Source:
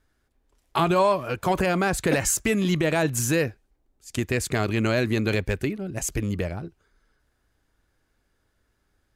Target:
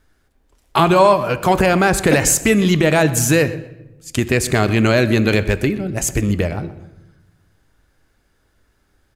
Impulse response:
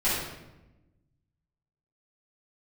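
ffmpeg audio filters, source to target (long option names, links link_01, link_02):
-filter_complex "[0:a]asplit=2[link_01][link_02];[link_02]adelay=124,lowpass=frequency=4900:poles=1,volume=-17dB,asplit=2[link_03][link_04];[link_04]adelay=124,lowpass=frequency=4900:poles=1,volume=0.31,asplit=2[link_05][link_06];[link_06]adelay=124,lowpass=frequency=4900:poles=1,volume=0.31[link_07];[link_01][link_03][link_05][link_07]amix=inputs=4:normalize=0,asplit=2[link_08][link_09];[1:a]atrim=start_sample=2205[link_10];[link_09][link_10]afir=irnorm=-1:irlink=0,volume=-26dB[link_11];[link_08][link_11]amix=inputs=2:normalize=0,volume=8dB"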